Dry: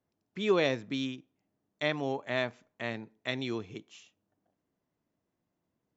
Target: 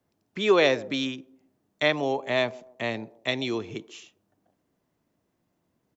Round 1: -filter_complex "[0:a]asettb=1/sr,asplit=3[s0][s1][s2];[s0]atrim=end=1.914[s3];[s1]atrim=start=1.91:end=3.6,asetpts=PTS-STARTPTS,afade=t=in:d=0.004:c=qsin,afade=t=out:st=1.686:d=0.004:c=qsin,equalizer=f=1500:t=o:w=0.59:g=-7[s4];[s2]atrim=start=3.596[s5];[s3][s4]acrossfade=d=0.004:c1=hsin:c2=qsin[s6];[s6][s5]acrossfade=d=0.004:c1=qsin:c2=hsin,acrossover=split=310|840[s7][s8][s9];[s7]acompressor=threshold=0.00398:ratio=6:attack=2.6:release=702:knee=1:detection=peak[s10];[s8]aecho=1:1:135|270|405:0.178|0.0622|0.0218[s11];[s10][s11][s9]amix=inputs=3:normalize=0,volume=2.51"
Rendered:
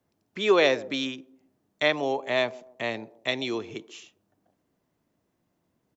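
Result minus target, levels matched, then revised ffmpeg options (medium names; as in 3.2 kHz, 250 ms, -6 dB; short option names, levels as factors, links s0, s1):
compression: peak gain reduction +6 dB
-filter_complex "[0:a]asettb=1/sr,asplit=3[s0][s1][s2];[s0]atrim=end=1.914[s3];[s1]atrim=start=1.91:end=3.6,asetpts=PTS-STARTPTS,afade=t=in:d=0.004:c=qsin,afade=t=out:st=1.686:d=0.004:c=qsin,equalizer=f=1500:t=o:w=0.59:g=-7[s4];[s2]atrim=start=3.596[s5];[s3][s4]acrossfade=d=0.004:c1=hsin:c2=qsin[s6];[s6][s5]acrossfade=d=0.004:c1=qsin:c2=hsin,acrossover=split=310|840[s7][s8][s9];[s7]acompressor=threshold=0.00891:ratio=6:attack=2.6:release=702:knee=1:detection=peak[s10];[s8]aecho=1:1:135|270|405:0.178|0.0622|0.0218[s11];[s10][s11][s9]amix=inputs=3:normalize=0,volume=2.51"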